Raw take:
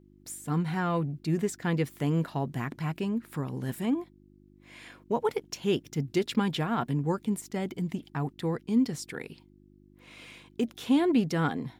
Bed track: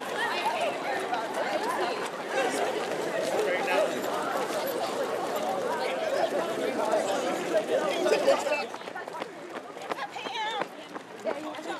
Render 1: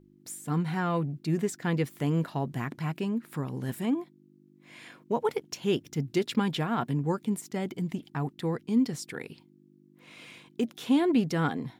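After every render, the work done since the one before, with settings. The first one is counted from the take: de-hum 50 Hz, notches 2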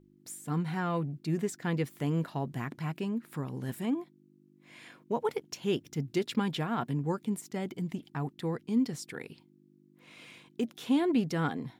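trim -3 dB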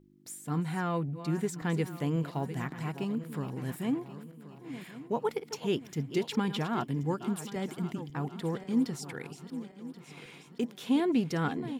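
backward echo that repeats 540 ms, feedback 63%, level -12 dB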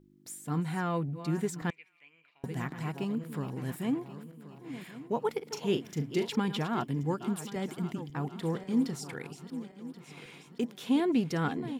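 1.70–2.44 s: band-pass filter 2.4 kHz, Q 13; 5.43–6.30 s: doubling 40 ms -8.5 dB; 8.33–9.14 s: doubling 37 ms -13.5 dB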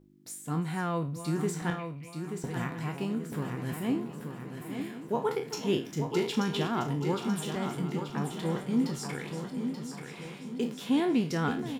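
spectral sustain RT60 0.33 s; on a send: feedback delay 882 ms, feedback 45%, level -7 dB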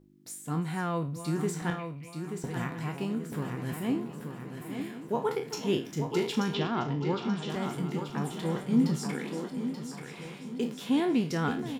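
6.54–7.50 s: low-pass 5.5 kHz 24 dB/octave; 8.70–9.48 s: resonant high-pass 130 Hz -> 290 Hz, resonance Q 2.5

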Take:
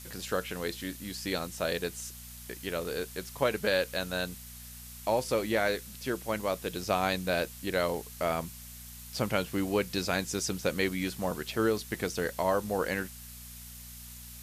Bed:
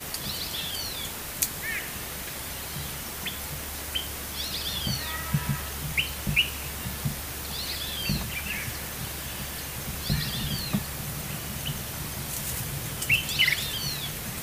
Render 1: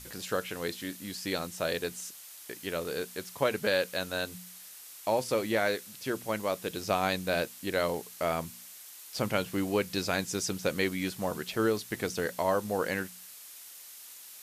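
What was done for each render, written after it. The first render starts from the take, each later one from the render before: de-hum 60 Hz, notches 4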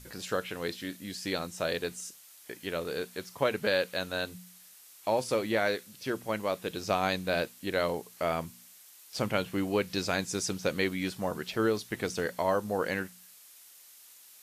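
noise print and reduce 6 dB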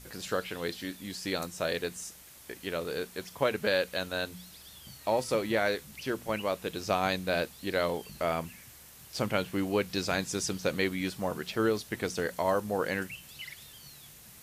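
add bed -21.5 dB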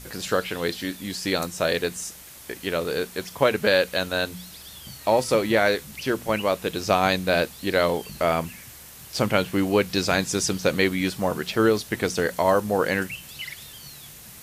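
trim +8 dB

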